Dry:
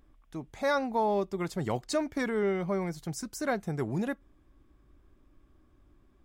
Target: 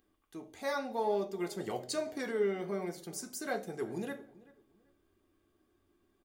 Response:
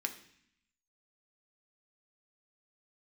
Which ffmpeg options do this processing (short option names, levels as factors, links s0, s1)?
-filter_complex "[0:a]highshelf=f=11000:g=11,asplit=2[s0][s1];[s1]adelay=385,lowpass=f=2100:p=1,volume=0.0944,asplit=2[s2][s3];[s3]adelay=385,lowpass=f=2100:p=1,volume=0.28[s4];[s0][s2][s4]amix=inputs=3:normalize=0[s5];[1:a]atrim=start_sample=2205,asetrate=79380,aresample=44100[s6];[s5][s6]afir=irnorm=-1:irlink=0"